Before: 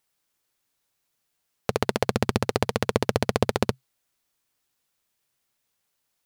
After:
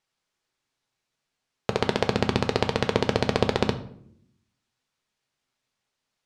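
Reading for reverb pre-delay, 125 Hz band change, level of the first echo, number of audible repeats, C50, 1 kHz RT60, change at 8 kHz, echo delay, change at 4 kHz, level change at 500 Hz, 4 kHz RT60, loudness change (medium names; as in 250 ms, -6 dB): 5 ms, +0.5 dB, no echo, no echo, 13.0 dB, 0.55 s, -5.0 dB, no echo, +2.5 dB, +0.5 dB, 0.45 s, +0.5 dB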